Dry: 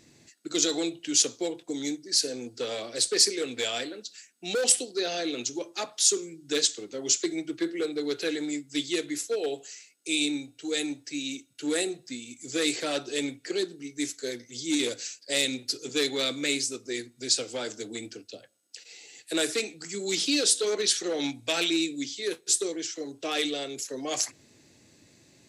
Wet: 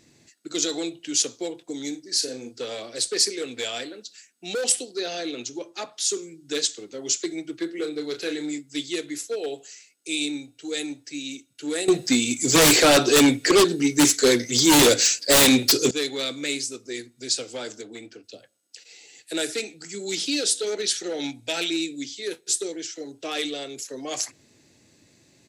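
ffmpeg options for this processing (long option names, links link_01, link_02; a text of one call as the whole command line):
ffmpeg -i in.wav -filter_complex "[0:a]asplit=3[link_01][link_02][link_03];[link_01]afade=type=out:start_time=1.92:duration=0.02[link_04];[link_02]asplit=2[link_05][link_06];[link_06]adelay=38,volume=-8dB[link_07];[link_05][link_07]amix=inputs=2:normalize=0,afade=type=in:start_time=1.92:duration=0.02,afade=type=out:start_time=2.53:duration=0.02[link_08];[link_03]afade=type=in:start_time=2.53:duration=0.02[link_09];[link_04][link_08][link_09]amix=inputs=3:normalize=0,asettb=1/sr,asplit=3[link_10][link_11][link_12];[link_10]atrim=end=5.314[link_13];[link_11]atrim=start=5.31:end=6.1,asetpts=PTS-STARTPTS,afade=type=in:duration=0.004:curve=qsin,afade=type=out:start_time=0.786:duration=0.004:curve=qsin,highshelf=frequency=6700:gain=-6.5[link_14];[link_12]atrim=start=6.096[link_15];[link_13][link_14]acrossfade=duration=0.004:curve1=hsin:curve2=qsin[link_16];[link_16][link_15]acrossfade=duration=0.004:curve1=qsin:curve2=hsin,asettb=1/sr,asplit=3[link_17][link_18][link_19];[link_17]atrim=end=7.754[link_20];[link_18]atrim=start=7.75:end=8.58,asetpts=PTS-STARTPTS,afade=type=in:duration=0.004:curve=qsin,afade=type=out:start_time=0.826:duration=0.004:curve=qsin,asplit=2[link_21][link_22];[link_22]adelay=33,volume=-7.5dB[link_23];[link_21][link_23]amix=inputs=2:normalize=0,atrim=end_sample=36603[link_24];[link_19]atrim=start=8.576[link_25];[link_20][link_24]acrossfade=duration=0.004:curve1=hsin:curve2=qsin[link_26];[link_26][link_25]acrossfade=duration=0.004:curve1=qsin:curve2=hsin,asettb=1/sr,asplit=3[link_27][link_28][link_29];[link_27]atrim=end=11.884[link_30];[link_28]atrim=start=11.88:end=15.91,asetpts=PTS-STARTPTS,afade=type=in:duration=0.004:curve=qsin,afade=type=out:start_time=4.026:duration=0.004:curve=qsin,aeval=exprs='0.266*sin(PI/2*5.62*val(0)/0.266)':channel_layout=same[link_31];[link_29]atrim=start=15.906[link_32];[link_30][link_31]acrossfade=duration=0.004:curve1=hsin:curve2=qsin[link_33];[link_33][link_32]acrossfade=duration=0.004:curve1=qsin:curve2=hsin,asettb=1/sr,asplit=3[link_34][link_35][link_36];[link_34]atrim=end=17.814[link_37];[link_35]atrim=start=17.81:end=18.24,asetpts=PTS-STARTPTS,afade=type=in:duration=0.004:curve=qsin,afade=type=out:start_time=0.426:duration=0.004:curve=qsin,asplit=2[link_38][link_39];[link_39]highpass=frequency=720:poles=1,volume=7dB,asoftclip=type=tanh:threshold=-23dB[link_40];[link_38][link_40]amix=inputs=2:normalize=0,lowpass=frequency=1600:poles=1,volume=-6dB[link_41];[link_36]atrim=start=18.236[link_42];[link_37][link_41]acrossfade=duration=0.004:curve1=hsin:curve2=qsin[link_43];[link_43][link_42]acrossfade=duration=0.004:curve1=qsin:curve2=hsin,asettb=1/sr,asplit=3[link_44][link_45][link_46];[link_44]atrim=end=19.344[link_47];[link_45]atrim=start=19.34:end=23.22,asetpts=PTS-STARTPTS,afade=type=in:duration=0.004:curve=qsin,afade=type=out:start_time=3.876:duration=0.004:curve=qsin,asuperstop=centerf=1100:order=4:qfactor=5.8[link_48];[link_46]atrim=start=23.216[link_49];[link_47][link_48]acrossfade=duration=0.004:curve1=hsin:curve2=qsin[link_50];[link_50][link_49]acrossfade=duration=0.004:curve1=qsin:curve2=hsin" out.wav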